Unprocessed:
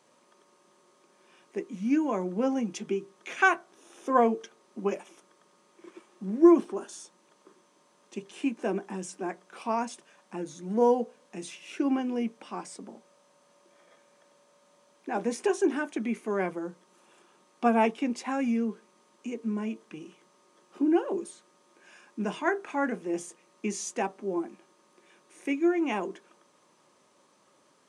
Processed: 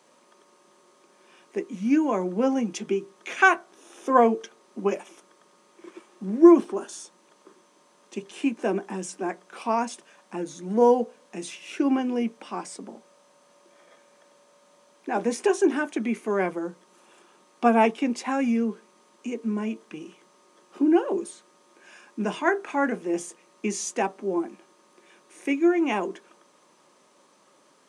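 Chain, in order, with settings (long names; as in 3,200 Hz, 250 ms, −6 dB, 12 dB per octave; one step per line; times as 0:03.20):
high-pass filter 160 Hz
level +4.5 dB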